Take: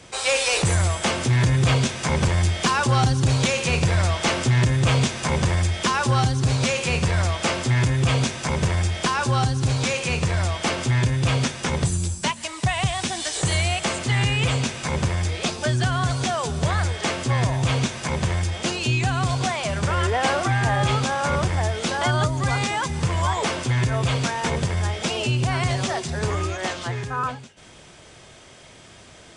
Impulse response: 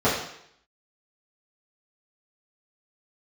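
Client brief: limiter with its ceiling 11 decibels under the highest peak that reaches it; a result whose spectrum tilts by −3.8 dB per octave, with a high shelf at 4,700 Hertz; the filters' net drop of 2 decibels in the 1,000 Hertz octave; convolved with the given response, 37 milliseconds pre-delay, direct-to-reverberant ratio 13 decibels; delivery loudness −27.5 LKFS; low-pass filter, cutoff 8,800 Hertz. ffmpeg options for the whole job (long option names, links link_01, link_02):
-filter_complex "[0:a]lowpass=8800,equalizer=frequency=1000:width_type=o:gain=-3,highshelf=frequency=4700:gain=8.5,alimiter=limit=-19dB:level=0:latency=1,asplit=2[link_01][link_02];[1:a]atrim=start_sample=2205,adelay=37[link_03];[link_02][link_03]afir=irnorm=-1:irlink=0,volume=-31.5dB[link_04];[link_01][link_04]amix=inputs=2:normalize=0,volume=-0.5dB"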